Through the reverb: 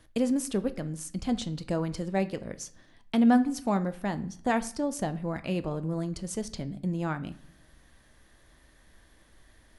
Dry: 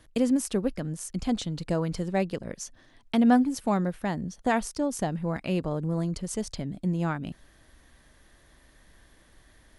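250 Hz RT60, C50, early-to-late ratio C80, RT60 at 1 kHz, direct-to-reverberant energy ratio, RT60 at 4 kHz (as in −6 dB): 0.90 s, 17.5 dB, 20.5 dB, 0.60 s, 11.5 dB, 0.50 s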